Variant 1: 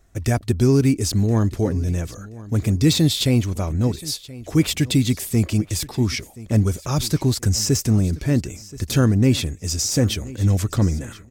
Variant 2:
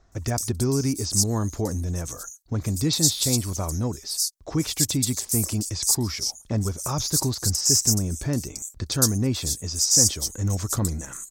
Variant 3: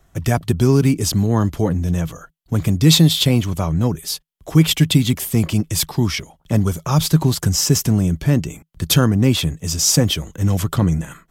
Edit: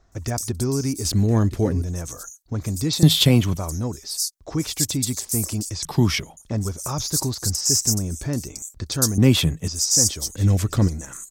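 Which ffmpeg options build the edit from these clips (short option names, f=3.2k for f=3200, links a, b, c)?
-filter_complex "[0:a]asplit=2[a][b];[2:a]asplit=3[c][d][e];[1:a]asplit=6[f][g][h][i][j][k];[f]atrim=end=1.052[l];[a]atrim=start=1.048:end=1.822[m];[g]atrim=start=1.818:end=3.032[n];[c]atrim=start=3.028:end=3.572[o];[h]atrim=start=3.568:end=5.852[p];[d]atrim=start=5.848:end=6.372[q];[i]atrim=start=6.368:end=9.182[r];[e]atrim=start=9.178:end=9.682[s];[j]atrim=start=9.678:end=10.362[t];[b]atrim=start=10.358:end=10.882[u];[k]atrim=start=10.878[v];[l][m]acrossfade=d=0.004:c1=hsin:c2=hsin[w];[w][n]acrossfade=d=0.004:c1=hsin:c2=hsin[x];[x][o]acrossfade=d=0.004:c1=hsin:c2=hsin[y];[y][p]acrossfade=d=0.004:c1=hsin:c2=hsin[z];[z][q]acrossfade=d=0.004:c1=hsin:c2=hsin[aa];[aa][r]acrossfade=d=0.004:c1=hsin:c2=hsin[ab];[ab][s]acrossfade=d=0.004:c1=hsin:c2=hsin[ac];[ac][t]acrossfade=d=0.004:c1=hsin:c2=hsin[ad];[ad][u]acrossfade=d=0.004:c1=hsin:c2=hsin[ae];[ae][v]acrossfade=d=0.004:c1=hsin:c2=hsin"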